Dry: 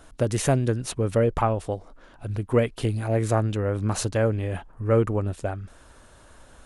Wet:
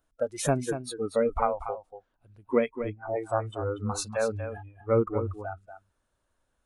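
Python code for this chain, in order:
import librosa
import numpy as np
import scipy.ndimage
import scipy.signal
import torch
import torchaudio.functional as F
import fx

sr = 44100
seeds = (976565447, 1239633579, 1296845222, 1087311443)

y = fx.steep_lowpass(x, sr, hz=2000.0, slope=36, at=(2.69, 3.16))
y = fx.noise_reduce_blind(y, sr, reduce_db=24)
y = y + 10.0 ** (-10.0 / 20.0) * np.pad(y, (int(238 * sr / 1000.0), 0))[:len(y)]
y = y * librosa.db_to_amplitude(-2.0)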